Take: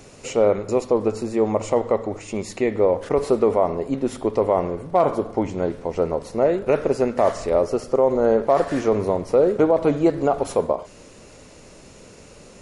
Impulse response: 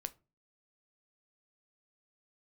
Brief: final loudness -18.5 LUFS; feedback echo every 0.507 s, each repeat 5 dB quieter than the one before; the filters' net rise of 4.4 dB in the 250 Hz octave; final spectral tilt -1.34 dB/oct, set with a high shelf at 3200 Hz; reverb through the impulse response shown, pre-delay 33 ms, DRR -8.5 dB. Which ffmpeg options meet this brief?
-filter_complex "[0:a]equalizer=f=250:t=o:g=6,highshelf=f=3.2k:g=-6,aecho=1:1:507|1014|1521|2028|2535|3042|3549:0.562|0.315|0.176|0.0988|0.0553|0.031|0.0173,asplit=2[a][b];[1:a]atrim=start_sample=2205,adelay=33[c];[b][c]afir=irnorm=-1:irlink=0,volume=11dB[d];[a][d]amix=inputs=2:normalize=0,volume=-10dB"

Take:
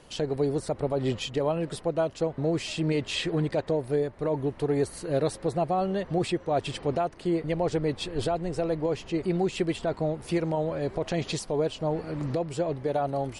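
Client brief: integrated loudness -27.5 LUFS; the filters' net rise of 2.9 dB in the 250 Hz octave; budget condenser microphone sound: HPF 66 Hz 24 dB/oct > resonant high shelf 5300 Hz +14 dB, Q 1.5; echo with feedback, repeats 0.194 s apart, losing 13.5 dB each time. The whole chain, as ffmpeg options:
-af "highpass=f=66:w=0.5412,highpass=f=66:w=1.3066,equalizer=f=250:t=o:g=4.5,highshelf=f=5.3k:t=q:w=1.5:g=14,aecho=1:1:194|388:0.211|0.0444,volume=-1dB"

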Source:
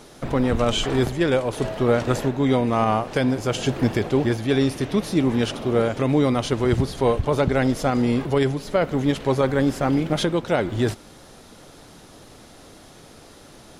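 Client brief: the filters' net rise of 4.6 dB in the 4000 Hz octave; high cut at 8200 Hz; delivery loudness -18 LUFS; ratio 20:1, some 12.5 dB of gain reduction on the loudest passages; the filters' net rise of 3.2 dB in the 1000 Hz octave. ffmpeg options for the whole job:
-af "lowpass=8.2k,equalizer=f=1k:t=o:g=4,equalizer=f=4k:t=o:g=6,acompressor=threshold=-26dB:ratio=20,volume=13dB"

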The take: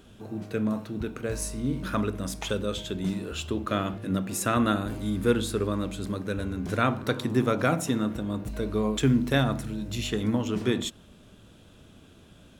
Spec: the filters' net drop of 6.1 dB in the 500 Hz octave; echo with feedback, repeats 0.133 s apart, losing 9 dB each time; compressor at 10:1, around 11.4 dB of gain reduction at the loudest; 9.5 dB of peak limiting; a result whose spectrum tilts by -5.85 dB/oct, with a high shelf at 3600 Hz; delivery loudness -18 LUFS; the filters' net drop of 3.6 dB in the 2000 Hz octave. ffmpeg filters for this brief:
-af "equalizer=f=500:t=o:g=-7.5,equalizer=f=2k:t=o:g=-3,highshelf=f=3.6k:g=-6,acompressor=threshold=-31dB:ratio=10,alimiter=level_in=5.5dB:limit=-24dB:level=0:latency=1,volume=-5.5dB,aecho=1:1:133|266|399|532:0.355|0.124|0.0435|0.0152,volume=20.5dB"

